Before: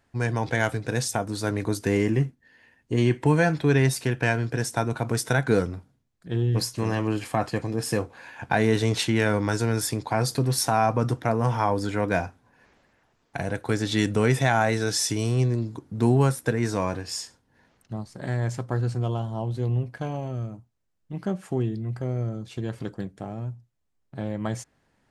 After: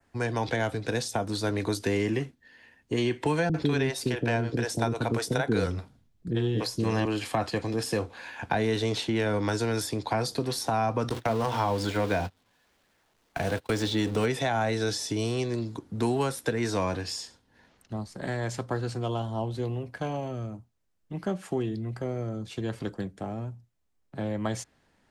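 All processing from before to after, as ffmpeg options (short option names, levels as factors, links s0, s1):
-filter_complex "[0:a]asettb=1/sr,asplit=3[s0][s1][s2];[s0]atrim=end=3.494[s3];[s1]atrim=start=3.49:end=7.05,asetpts=PTS-STARTPTS,afade=t=in:d=0.004:c=qsin,afade=t=out:st=3.556:d=0.004:c=qsin,lowshelf=f=350:g=11,acrossover=split=430[s4][s5];[s5]adelay=50[s6];[s4][s6]amix=inputs=2:normalize=0,atrim=end_sample=156996[s7];[s2]atrim=start=7.046[s8];[s3][s7]acrossfade=d=0.004:c1=hsin:c2=qsin[s9];[s9][s8]acrossfade=d=0.004:c1=qsin:c2=hsin,asettb=1/sr,asplit=3[s10][s11][s12];[s10]atrim=end=11.094[s13];[s11]atrim=start=11.09:end=14.26,asetpts=PTS-STARTPTS,afade=t=in:d=0.004:c=qsin,afade=t=out:st=3.166:d=0.004:c=qsin,aeval=exprs='val(0)+0.5*0.0211*sgn(val(0))':c=same,bandreject=f=60:t=h:w=6,bandreject=f=120:t=h:w=6,bandreject=f=180:t=h:w=6,bandreject=f=240:t=h:w=6,bandreject=f=300:t=h:w=6,bandreject=f=360:t=h:w=6,bandreject=f=420:t=h:w=6,agate=range=0.0282:threshold=0.0282:ratio=16:release=100:detection=peak[s14];[s12]atrim=start=14.256[s15];[s13][s14]acrossfade=d=0.004:c1=hsin:c2=qsin[s16];[s16][s15]acrossfade=d=0.004:c1=qsin:c2=hsin,adynamicequalizer=threshold=0.00447:dfrequency=3700:dqfactor=1.2:tfrequency=3700:tqfactor=1.2:attack=5:release=100:ratio=0.375:range=4:mode=boostabove:tftype=bell,acrossover=split=130|270|960[s17][s18][s19][s20];[s17]acompressor=threshold=0.02:ratio=4[s21];[s18]acompressor=threshold=0.0126:ratio=4[s22];[s19]acompressor=threshold=0.0447:ratio=4[s23];[s20]acompressor=threshold=0.0178:ratio=4[s24];[s21][s22][s23][s24]amix=inputs=4:normalize=0,equalizer=f=130:t=o:w=0.28:g=-6.5,volume=1.12"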